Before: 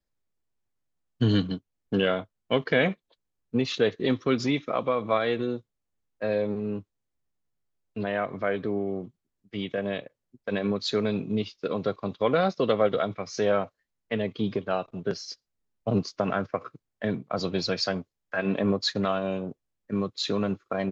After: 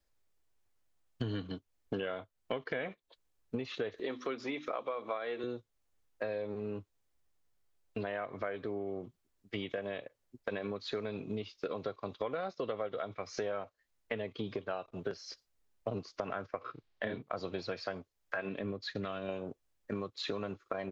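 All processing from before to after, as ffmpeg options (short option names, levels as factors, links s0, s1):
-filter_complex "[0:a]asettb=1/sr,asplit=3[s0][s1][s2];[s0]atrim=end=3.944[s3];[s1]atrim=start=3.94:end=5.44,asetpts=PTS-STARTPTS,afade=t=in:d=0.004:c=qsin,afade=t=out:st=1.496:d=0.004:c=qsin,highpass=260,acompressor=mode=upward:threshold=0.0316:ratio=2.5:attack=3.2:release=140:knee=2.83:detection=peak,bandreject=f=50:t=h:w=6,bandreject=f=100:t=h:w=6,bandreject=f=150:t=h:w=6,bandreject=f=200:t=h:w=6,bandreject=f=250:t=h:w=6,bandreject=f=300:t=h:w=6,bandreject=f=350:t=h:w=6[s4];[s2]atrim=start=5.436[s5];[s3][s4]acrossfade=d=0.004:c1=hsin:c2=qsin[s6];[s6][s5]acrossfade=d=0.004:c1=qsin:c2=hsin,asettb=1/sr,asplit=3[s7][s8][s9];[s7]atrim=end=16.614[s10];[s8]atrim=start=16.61:end=17.22,asetpts=PTS-STARTPTS,afade=t=in:d=0.004:c=qsin,afade=t=out:st=0.606:d=0.004:c=qsin,lowpass=f=3900:t=q:w=1.7,asplit=2[s11][s12];[s12]adelay=32,volume=0.794[s13];[s11][s13]amix=inputs=2:normalize=0,atrim=end_sample=26901[s14];[s9]atrim=start=17.216[s15];[s10][s14]acrossfade=d=0.004:c1=hsin:c2=qsin[s16];[s16][s15]acrossfade=d=0.004:c1=qsin:c2=hsin,asettb=1/sr,asplit=3[s17][s18][s19];[s17]atrim=end=18.494[s20];[s18]atrim=start=18.49:end=19.29,asetpts=PTS-STARTPTS,afade=t=in:d=0.004:c=qsin,afade=t=out:st=0.796:d=0.004:c=qsin,equalizer=f=850:t=o:w=1.7:g=-10.5,adynamicsmooth=sensitivity=0.5:basefreq=6200[s21];[s19]atrim=start=19.286[s22];[s20][s21]acrossfade=d=0.004:c1=hsin:c2=qsin[s23];[s23][s22]acrossfade=d=0.004:c1=qsin:c2=hsin,acrossover=split=2800[s24][s25];[s25]acompressor=threshold=0.00447:ratio=4:attack=1:release=60[s26];[s24][s26]amix=inputs=2:normalize=0,equalizer=f=180:t=o:w=1.3:g=-8.5,acompressor=threshold=0.01:ratio=6,volume=1.78"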